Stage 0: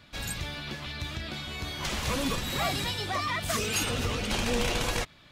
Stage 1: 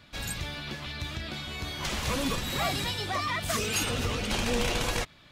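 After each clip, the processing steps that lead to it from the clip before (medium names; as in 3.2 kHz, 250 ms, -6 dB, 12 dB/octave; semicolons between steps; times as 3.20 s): no audible change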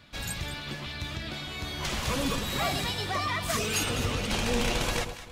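echo whose repeats swap between lows and highs 103 ms, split 1 kHz, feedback 56%, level -7.5 dB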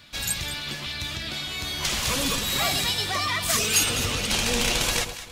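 treble shelf 2.3 kHz +11 dB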